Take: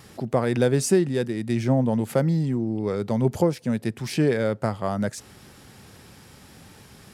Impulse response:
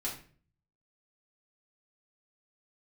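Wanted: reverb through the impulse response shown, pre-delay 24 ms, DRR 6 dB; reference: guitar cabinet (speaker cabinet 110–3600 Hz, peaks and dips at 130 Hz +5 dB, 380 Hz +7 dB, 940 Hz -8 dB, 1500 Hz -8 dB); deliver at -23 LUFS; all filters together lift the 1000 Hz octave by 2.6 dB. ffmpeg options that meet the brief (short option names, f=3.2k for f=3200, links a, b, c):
-filter_complex "[0:a]equalizer=f=1k:t=o:g=9,asplit=2[a][b];[1:a]atrim=start_sample=2205,adelay=24[c];[b][c]afir=irnorm=-1:irlink=0,volume=-8.5dB[d];[a][d]amix=inputs=2:normalize=0,highpass=110,equalizer=f=130:t=q:w=4:g=5,equalizer=f=380:t=q:w=4:g=7,equalizer=f=940:t=q:w=4:g=-8,equalizer=f=1.5k:t=q:w=4:g=-8,lowpass=f=3.6k:w=0.5412,lowpass=f=3.6k:w=1.3066,volume=-3.5dB"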